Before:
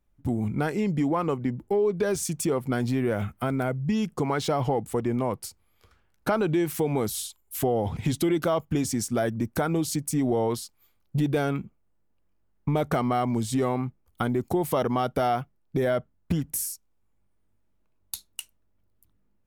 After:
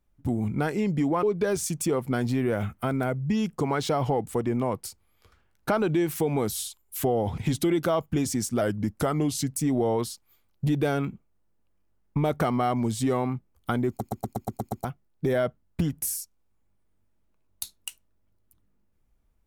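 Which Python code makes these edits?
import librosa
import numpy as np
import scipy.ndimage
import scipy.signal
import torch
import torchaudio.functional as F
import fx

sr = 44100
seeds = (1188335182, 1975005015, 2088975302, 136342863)

y = fx.edit(x, sr, fx.cut(start_s=1.23, length_s=0.59),
    fx.speed_span(start_s=9.2, length_s=0.87, speed=0.92),
    fx.stutter_over(start_s=14.4, slice_s=0.12, count=8), tone=tone)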